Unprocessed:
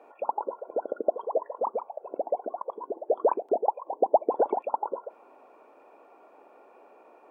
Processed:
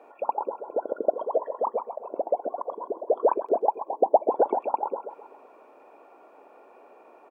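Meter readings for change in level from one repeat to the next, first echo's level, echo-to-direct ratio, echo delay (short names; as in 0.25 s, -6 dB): -4.5 dB, -13.0 dB, -11.5 dB, 0.129 s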